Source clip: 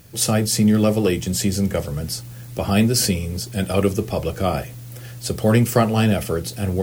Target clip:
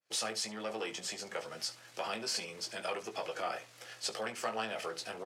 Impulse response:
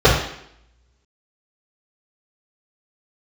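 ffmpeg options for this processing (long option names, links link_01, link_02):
-filter_complex "[0:a]agate=range=-33dB:threshold=-33dB:ratio=3:detection=peak,asplit=2[link_01][link_02];[link_02]alimiter=limit=-14.5dB:level=0:latency=1:release=61,volume=-2.5dB[link_03];[link_01][link_03]amix=inputs=2:normalize=0,acompressor=threshold=-21dB:ratio=2,atempo=1.3,asoftclip=type=tanh:threshold=-14.5dB,highpass=720,lowpass=5900,aecho=1:1:18|71:0.473|0.141,adynamicequalizer=threshold=0.00891:dfrequency=2500:dqfactor=0.7:tfrequency=2500:tqfactor=0.7:attack=5:release=100:ratio=0.375:range=2:mode=cutabove:tftype=highshelf,volume=-6.5dB"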